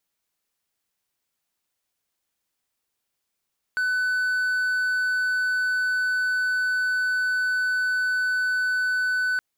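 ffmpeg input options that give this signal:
ffmpeg -f lavfi -i "aevalsrc='0.112*(1-4*abs(mod(1500*t+0.25,1)-0.5))':duration=5.62:sample_rate=44100" out.wav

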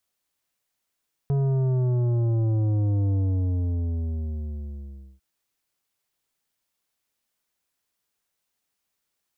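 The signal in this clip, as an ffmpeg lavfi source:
ffmpeg -f lavfi -i "aevalsrc='0.0891*clip((3.9-t)/2.09,0,1)*tanh(3.16*sin(2*PI*140*3.9/log(65/140)*(exp(log(65/140)*t/3.9)-1)))/tanh(3.16)':duration=3.9:sample_rate=44100" out.wav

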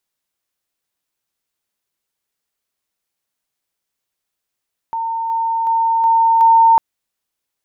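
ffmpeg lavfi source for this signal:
ffmpeg -f lavfi -i "aevalsrc='pow(10,(-18.5+3*floor(t/0.37))/20)*sin(2*PI*910*t)':duration=1.85:sample_rate=44100" out.wav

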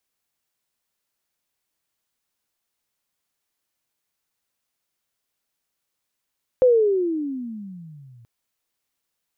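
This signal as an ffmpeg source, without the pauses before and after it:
ffmpeg -f lavfi -i "aevalsrc='pow(10,(-10.5-35*t/1.63)/20)*sin(2*PI*521*1.63/(-26.5*log(2)/12)*(exp(-26.5*log(2)/12*t/1.63)-1))':duration=1.63:sample_rate=44100" out.wav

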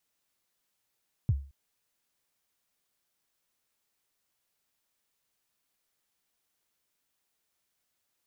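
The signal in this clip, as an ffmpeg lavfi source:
ffmpeg -f lavfi -i "aevalsrc='0.119*pow(10,-3*t/0.37)*sin(2*PI*(140*0.042/log(69/140)*(exp(log(69/140)*min(t,0.042)/0.042)-1)+69*max(t-0.042,0)))':duration=0.22:sample_rate=44100" out.wav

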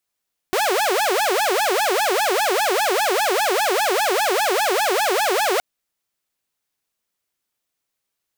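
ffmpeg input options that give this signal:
ffmpeg -f lavfi -i "aevalsrc='0.188*(2*mod((615*t-255/(2*PI*5)*sin(2*PI*5*t)),1)-1)':duration=5.07:sample_rate=44100" out.wav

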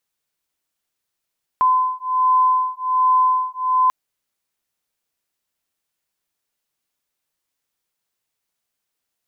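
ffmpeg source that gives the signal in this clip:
ffmpeg -f lavfi -i "aevalsrc='0.133*(sin(2*PI*1020*t)+sin(2*PI*1021.3*t))':duration=2.29:sample_rate=44100" out.wav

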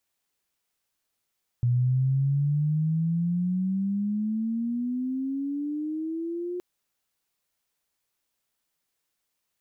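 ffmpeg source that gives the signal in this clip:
ffmpeg -f lavfi -i "aevalsrc='pow(10,(-19.5-9.5*t/4.97)/20)*sin(2*PI*120*4.97/log(360/120)*(exp(log(360/120)*t/4.97)-1))':duration=4.97:sample_rate=44100" out.wav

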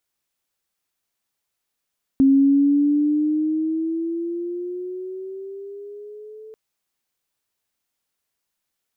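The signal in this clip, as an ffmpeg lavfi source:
ffmpeg -f lavfi -i "aevalsrc='pow(10,(-10.5-27*t/4.34)/20)*sin(2*PI*269*4.34/(8.5*log(2)/12)*(exp(8.5*log(2)/12*t/4.34)-1))':duration=4.34:sample_rate=44100" out.wav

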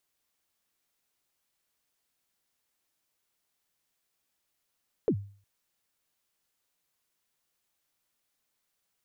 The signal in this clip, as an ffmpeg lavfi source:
ffmpeg -f lavfi -i "aevalsrc='0.112*pow(10,-3*t/0.44)*sin(2*PI*(510*0.072/log(100/510)*(exp(log(100/510)*min(t,0.072)/0.072)-1)+100*max(t-0.072,0)))':duration=0.36:sample_rate=44100" out.wav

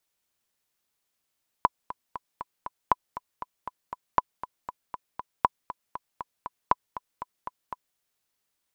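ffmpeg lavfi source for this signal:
ffmpeg -f lavfi -i "aevalsrc='pow(10,(-5.5-15*gte(mod(t,5*60/237),60/237))/20)*sin(2*PI*997*mod(t,60/237))*exp(-6.91*mod(t,60/237)/0.03)':duration=6.32:sample_rate=44100" out.wav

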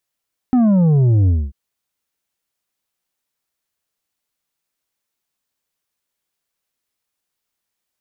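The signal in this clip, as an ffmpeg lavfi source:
ffmpeg -f lavfi -i "aevalsrc='0.282*clip((0.99-t)/0.24,0,1)*tanh(2.11*sin(2*PI*260*0.99/log(65/260)*(exp(log(65/260)*t/0.99)-1)))/tanh(2.11)':duration=0.99:sample_rate=44100" out.wav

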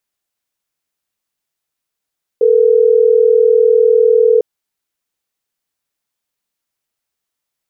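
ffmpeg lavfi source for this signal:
ffmpeg -f lavfi -i "aevalsrc='0.335*(sin(2*PI*440*t)+sin(2*PI*480*t))*clip(min(mod(t,6),2-mod(t,6))/0.005,0,1)':duration=3.12:sample_rate=44100" out.wav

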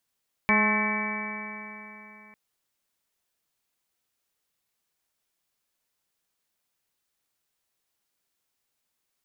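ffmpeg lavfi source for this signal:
ffmpeg -f lavfi -i "aevalsrc='0.0631*pow(10,-3*t/3.44)*sin(2*PI*210.2*t)+0.0224*pow(10,-3*t/3.44)*sin(2*PI*421.59*t)+0.0251*pow(10,-3*t/3.44)*sin(2*PI*635.36*t)+0.0335*pow(10,-3*t/3.44)*sin(2*PI*852.67*t)+0.0501*pow(10,-3*t/3.44)*sin(2*PI*1074.65*t)+0.0133*pow(10,-3*t/3.44)*sin(2*PI*1302.38*t)+0.0141*pow(10,-3*t/3.44)*sin(2*PI*1536.91*t)+0.0447*pow(10,-3*t/3.44)*sin(2*PI*1779.21*t)+0.0282*pow(10,-3*t/3.44)*sin(2*PI*2030.23*t)+0.0891*pow(10,-3*t/3.44)*sin(2*PI*2290.83*t)':duration=1.85:sample_rate=44100" out.wav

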